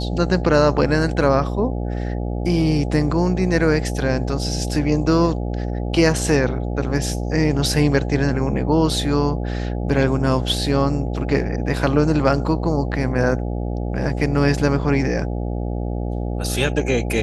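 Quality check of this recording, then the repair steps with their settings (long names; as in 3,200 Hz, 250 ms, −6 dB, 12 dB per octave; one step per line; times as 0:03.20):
mains buzz 60 Hz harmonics 14 −24 dBFS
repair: hum removal 60 Hz, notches 14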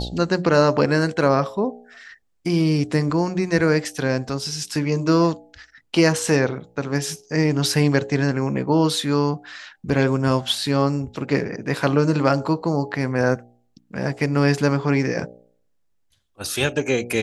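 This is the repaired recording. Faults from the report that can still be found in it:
none of them is left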